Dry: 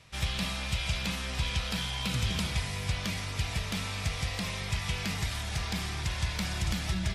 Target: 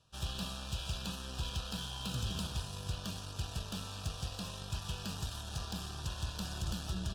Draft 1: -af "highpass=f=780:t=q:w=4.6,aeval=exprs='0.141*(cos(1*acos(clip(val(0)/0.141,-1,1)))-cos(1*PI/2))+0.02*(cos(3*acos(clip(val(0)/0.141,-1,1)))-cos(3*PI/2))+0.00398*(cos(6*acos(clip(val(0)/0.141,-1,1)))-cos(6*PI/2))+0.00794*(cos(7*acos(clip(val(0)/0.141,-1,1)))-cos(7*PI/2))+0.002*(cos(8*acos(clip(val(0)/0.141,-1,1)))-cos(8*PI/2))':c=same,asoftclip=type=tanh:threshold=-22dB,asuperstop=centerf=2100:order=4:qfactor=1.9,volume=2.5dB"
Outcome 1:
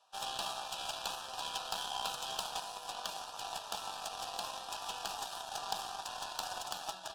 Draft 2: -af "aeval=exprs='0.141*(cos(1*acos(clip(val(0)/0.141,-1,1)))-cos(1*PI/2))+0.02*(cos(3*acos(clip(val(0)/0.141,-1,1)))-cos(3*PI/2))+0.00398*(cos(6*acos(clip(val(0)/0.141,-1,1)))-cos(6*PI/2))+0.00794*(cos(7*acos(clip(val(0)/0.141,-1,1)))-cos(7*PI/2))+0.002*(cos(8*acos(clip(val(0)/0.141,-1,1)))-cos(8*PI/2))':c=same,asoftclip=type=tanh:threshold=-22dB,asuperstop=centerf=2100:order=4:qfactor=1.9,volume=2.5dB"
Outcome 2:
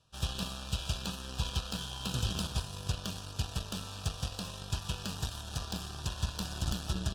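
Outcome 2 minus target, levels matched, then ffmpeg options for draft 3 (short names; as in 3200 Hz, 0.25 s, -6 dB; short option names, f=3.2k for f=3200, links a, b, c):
soft clip: distortion -11 dB
-af "aeval=exprs='0.141*(cos(1*acos(clip(val(0)/0.141,-1,1)))-cos(1*PI/2))+0.02*(cos(3*acos(clip(val(0)/0.141,-1,1)))-cos(3*PI/2))+0.00398*(cos(6*acos(clip(val(0)/0.141,-1,1)))-cos(6*PI/2))+0.00794*(cos(7*acos(clip(val(0)/0.141,-1,1)))-cos(7*PI/2))+0.002*(cos(8*acos(clip(val(0)/0.141,-1,1)))-cos(8*PI/2))':c=same,asoftclip=type=tanh:threshold=-32dB,asuperstop=centerf=2100:order=4:qfactor=1.9,volume=2.5dB"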